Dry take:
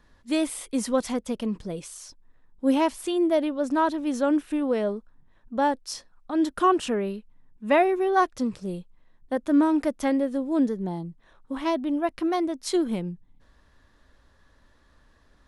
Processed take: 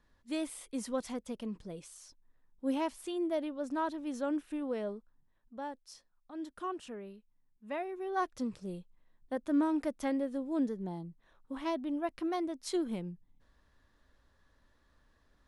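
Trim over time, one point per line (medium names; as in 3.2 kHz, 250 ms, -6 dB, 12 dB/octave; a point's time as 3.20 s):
4.93 s -11 dB
5.63 s -18 dB
7.87 s -18 dB
8.33 s -9 dB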